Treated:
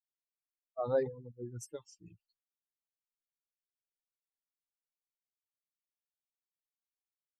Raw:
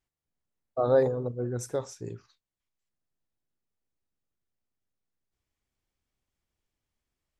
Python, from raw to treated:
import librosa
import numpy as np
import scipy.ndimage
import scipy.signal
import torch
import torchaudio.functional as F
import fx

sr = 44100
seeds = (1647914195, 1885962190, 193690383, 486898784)

y = fx.bin_expand(x, sr, power=3.0)
y = y * librosa.db_to_amplitude(-5.5)